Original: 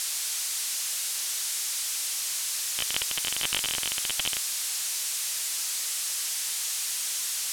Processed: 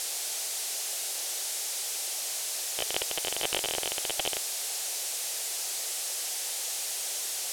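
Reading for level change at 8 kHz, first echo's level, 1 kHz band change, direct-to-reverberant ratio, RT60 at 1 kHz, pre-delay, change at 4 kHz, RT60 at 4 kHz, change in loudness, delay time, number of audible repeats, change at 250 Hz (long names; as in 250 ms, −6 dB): −3.0 dB, no echo audible, +3.0 dB, no reverb audible, no reverb audible, no reverb audible, −3.0 dB, no reverb audible, −3.0 dB, no echo audible, no echo audible, +2.5 dB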